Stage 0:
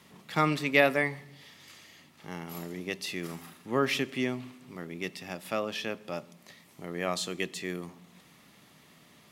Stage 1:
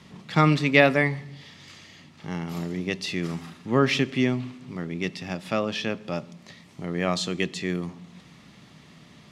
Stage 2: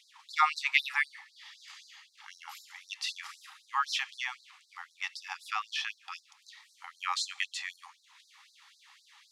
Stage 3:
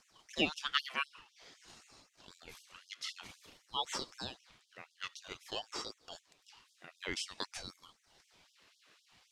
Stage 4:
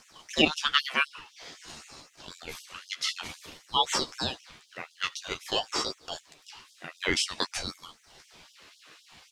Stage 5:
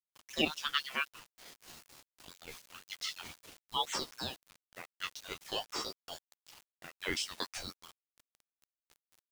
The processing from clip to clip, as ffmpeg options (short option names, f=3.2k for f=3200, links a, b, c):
-af "lowpass=5.4k,bass=f=250:g=8,treble=f=4k:g=4,volume=4.5dB"
-af "lowshelf=f=490:t=q:w=3:g=-9.5,afftfilt=real='re*gte(b*sr/1024,740*pow(3900/740,0.5+0.5*sin(2*PI*3.9*pts/sr)))':imag='im*gte(b*sr/1024,740*pow(3900/740,0.5+0.5*sin(2*PI*3.9*pts/sr)))':win_size=1024:overlap=0.75,volume=-2.5dB"
-af "aeval=exprs='val(0)*sin(2*PI*1400*n/s+1400*0.55/0.51*sin(2*PI*0.51*n/s))':c=same,volume=-4dB"
-filter_complex "[0:a]asplit=2[a][b];[b]alimiter=limit=-24dB:level=0:latency=1:release=303,volume=2.5dB[c];[a][c]amix=inputs=2:normalize=0,asplit=2[d][e];[e]adelay=13,volume=-7dB[f];[d][f]amix=inputs=2:normalize=0,volume=4dB"
-af "acrusher=bits=6:mix=0:aa=0.000001,volume=-8.5dB"